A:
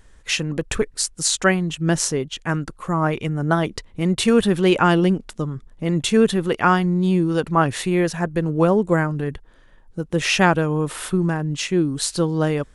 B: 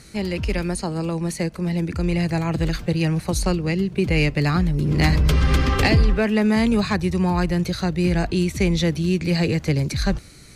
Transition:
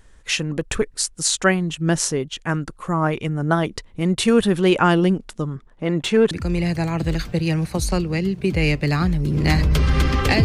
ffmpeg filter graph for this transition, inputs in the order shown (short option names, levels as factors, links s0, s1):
-filter_complex "[0:a]asettb=1/sr,asplit=3[s0][s1][s2];[s0]atrim=end=5.564[s3];[s1]atrim=start=5.56:end=6.31,asetpts=PTS-STARTPTS,afade=t=in:d=0.004:c=qsin,afade=t=out:st=0.746:d=0.004:c=qsin,asplit=2[s4][s5];[s5]highpass=f=720:p=1,volume=4.47,asoftclip=type=tanh:threshold=0.531[s6];[s4][s6]amix=inputs=2:normalize=0,lowpass=f=1500:p=1,volume=0.501[s7];[s2]atrim=start=6.306[s8];[s3][s7]acrossfade=d=0.004:c1=hsin:c2=qsin[s9];[s9][s8]acrossfade=d=0.004:c1=qsin:c2=hsin,apad=whole_dur=10.44,atrim=end=10.44,atrim=end=6.312[s10];[1:a]atrim=start=1.848:end=5.98[s11];[s10][s11]acrossfade=d=0.004:c1=hsin:c2=hsin"